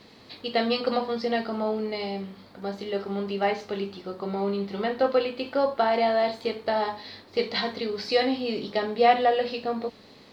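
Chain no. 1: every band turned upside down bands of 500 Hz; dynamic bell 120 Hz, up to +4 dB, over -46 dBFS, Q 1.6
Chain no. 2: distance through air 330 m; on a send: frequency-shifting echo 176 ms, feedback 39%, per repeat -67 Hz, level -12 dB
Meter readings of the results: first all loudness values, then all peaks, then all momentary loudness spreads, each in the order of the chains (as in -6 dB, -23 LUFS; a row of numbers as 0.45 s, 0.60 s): -27.0 LUFS, -28.0 LUFS; -7.0 dBFS, -9.5 dBFS; 11 LU, 12 LU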